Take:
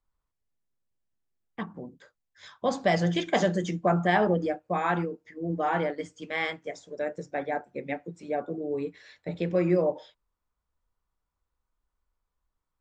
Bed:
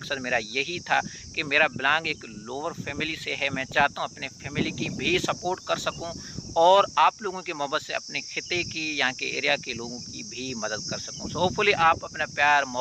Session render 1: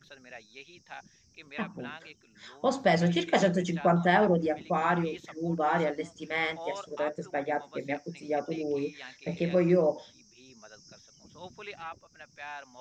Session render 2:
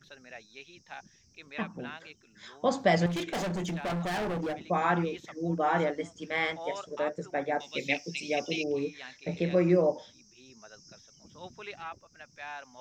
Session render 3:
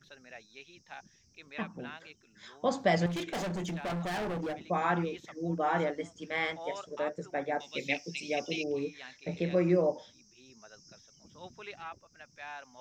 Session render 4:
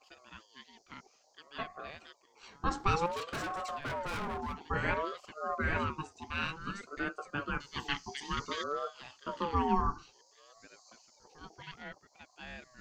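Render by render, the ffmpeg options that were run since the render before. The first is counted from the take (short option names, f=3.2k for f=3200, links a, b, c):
-filter_complex "[1:a]volume=-21.5dB[a];[0:a][a]amix=inputs=2:normalize=0"
-filter_complex "[0:a]asettb=1/sr,asplit=3[a][b][c];[a]atrim=end=3.064[d];[b]atrim=start=3.06:end=4.7,asetpts=PTS-STARTPTS,afade=t=in:d=0.004:c=qsin,afade=t=out:st=1.636:d=0.004:c=qsin,volume=30dB,asoftclip=hard,volume=-30dB[e];[c]atrim=start=4.696[f];[d][e]acrossfade=d=0.004:c1=hsin:c2=qsin[g];[g][f]acrossfade=d=0.004:c1=qsin:c2=hsin,asettb=1/sr,asplit=3[h][i][j];[h]atrim=end=5.424[k];[i]atrim=start=5.42:end=6.17,asetpts=PTS-STARTPTS,afade=t=in:d=0.004:c=qsin,afade=t=out:st=0.746:d=0.004:c=qsin,bandreject=f=4.6k:w=12[l];[j]atrim=start=6.166[m];[k][l]acrossfade=d=0.004:c1=hsin:c2=qsin[n];[n][m]acrossfade=d=0.004:c1=qsin:c2=hsin,asettb=1/sr,asplit=3[o][p][q];[o]atrim=end=7.604[r];[p]atrim=start=7.6:end=8.64,asetpts=PTS-STARTPTS,afade=t=in:d=0.004:c=qsin,afade=t=out:st=1.036:d=0.004:c=qsin,highshelf=f=2k:t=q:w=3:g=10.5[s];[q]atrim=start=8.636[t];[r][s]acrossfade=d=0.004:c1=hsin:c2=qsin[u];[u][t]acrossfade=d=0.004:c1=qsin:c2=hsin"
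-af "volume=-2.5dB"
-af "aeval=exprs='val(0)*sin(2*PI*740*n/s+740*0.25/0.56*sin(2*PI*0.56*n/s))':c=same"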